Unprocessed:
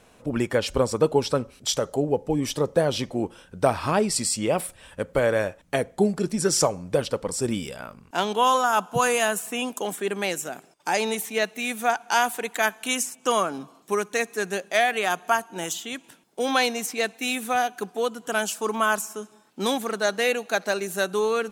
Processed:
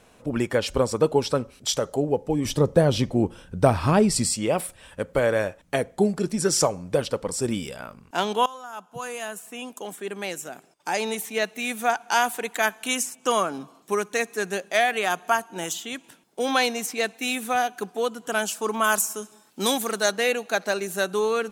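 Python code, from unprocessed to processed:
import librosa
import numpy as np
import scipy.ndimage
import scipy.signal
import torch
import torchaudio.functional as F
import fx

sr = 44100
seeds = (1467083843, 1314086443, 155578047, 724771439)

y = fx.low_shelf(x, sr, hz=240.0, db=11.5, at=(2.45, 4.34))
y = fx.high_shelf(y, sr, hz=4600.0, db=10.0, at=(18.84, 20.12))
y = fx.edit(y, sr, fx.fade_in_from(start_s=8.46, length_s=3.28, floor_db=-21.5), tone=tone)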